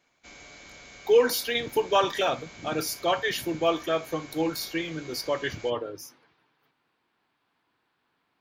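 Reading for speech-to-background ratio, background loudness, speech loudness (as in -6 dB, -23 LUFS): 19.0 dB, -46.0 LUFS, -27.0 LUFS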